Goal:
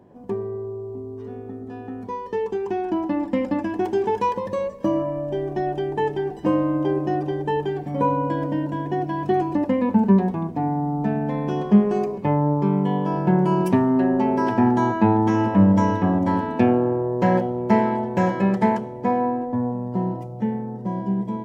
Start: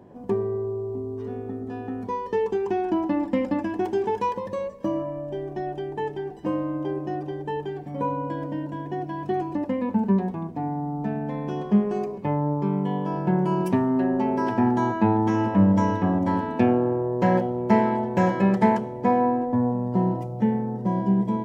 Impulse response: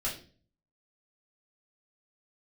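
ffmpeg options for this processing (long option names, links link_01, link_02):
-af "dynaudnorm=framelen=780:gausssize=11:maxgain=11.5dB,volume=-2.5dB"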